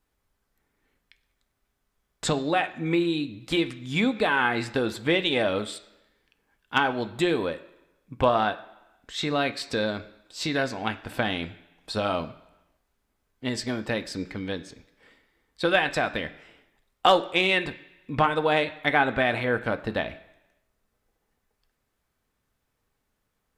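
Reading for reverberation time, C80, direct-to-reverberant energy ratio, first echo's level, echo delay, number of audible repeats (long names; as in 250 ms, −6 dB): 0.95 s, 18.0 dB, 8.0 dB, no echo audible, no echo audible, no echo audible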